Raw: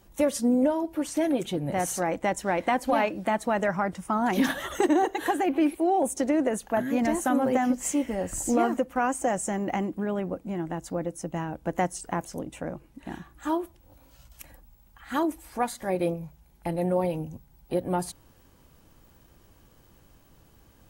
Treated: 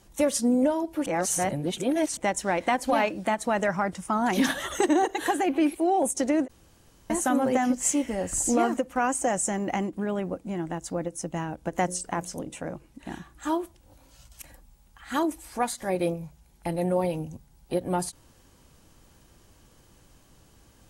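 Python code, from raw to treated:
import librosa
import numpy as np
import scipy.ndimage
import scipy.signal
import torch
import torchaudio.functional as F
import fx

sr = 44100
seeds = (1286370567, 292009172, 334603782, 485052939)

y = fx.hum_notches(x, sr, base_hz=60, count=10, at=(11.87, 12.71), fade=0.02)
y = fx.edit(y, sr, fx.reverse_span(start_s=1.06, length_s=1.11),
    fx.room_tone_fill(start_s=6.48, length_s=0.62), tone=tone)
y = scipy.signal.sosfilt(scipy.signal.butter(2, 9700.0, 'lowpass', fs=sr, output='sos'), y)
y = fx.high_shelf(y, sr, hz=4400.0, db=9.0)
y = fx.end_taper(y, sr, db_per_s=490.0)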